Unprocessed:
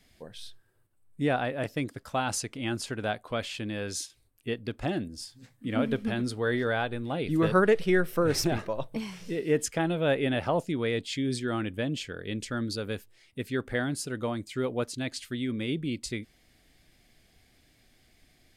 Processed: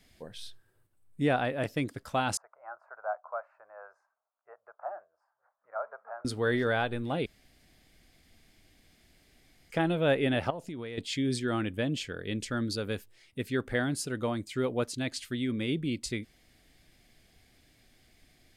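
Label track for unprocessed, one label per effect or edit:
2.370000	6.250000	elliptic band-pass 620–1400 Hz, stop band 50 dB
7.260000	9.700000	room tone
10.500000	10.980000	compressor 10:1, threshold -35 dBFS

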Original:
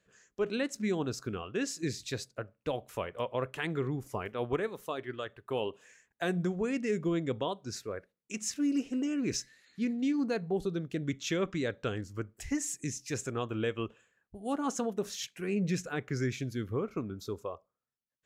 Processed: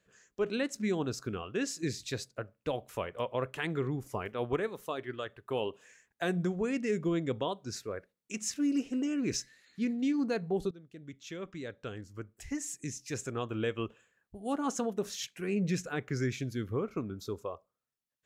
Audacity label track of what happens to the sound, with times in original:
10.710000	13.800000	fade in, from -19 dB

